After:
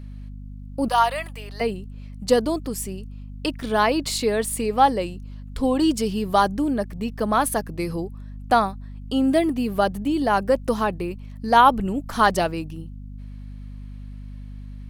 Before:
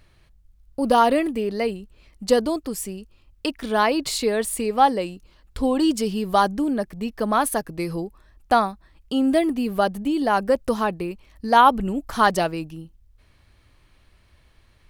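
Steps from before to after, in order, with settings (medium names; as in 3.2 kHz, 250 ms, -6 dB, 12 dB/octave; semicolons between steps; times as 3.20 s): 0.88–1.61 s: high-pass 730 Hz 24 dB/octave; hum 50 Hz, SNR 13 dB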